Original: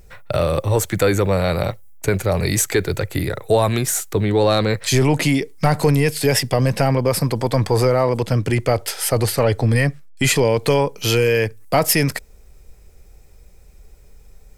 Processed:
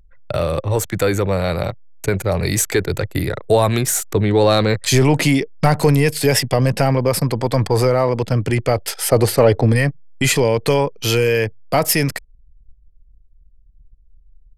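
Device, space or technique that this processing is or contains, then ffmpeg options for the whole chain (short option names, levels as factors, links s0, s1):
voice memo with heavy noise removal: -filter_complex "[0:a]asettb=1/sr,asplit=3[s0][s1][s2];[s0]atrim=end=9.094[s3];[s1]atrim=start=9.09:end=9.73,asetpts=PTS-STARTPTS,afade=t=in:d=0.004:c=qsin,afade=t=out:st=0.636:d=0.004:c=qsin,equalizer=f=410:w=0.55:g=5.5[s4];[s2]atrim=start=9.726[s5];[s3][s4]acrossfade=d=0.004:c1=hsin:c2=qsin[s6];[s6][s5]acrossfade=d=0.004:c1=qsin:c2=hsin,anlmdn=25.1,dynaudnorm=f=280:g=21:m=3.76,volume=0.891"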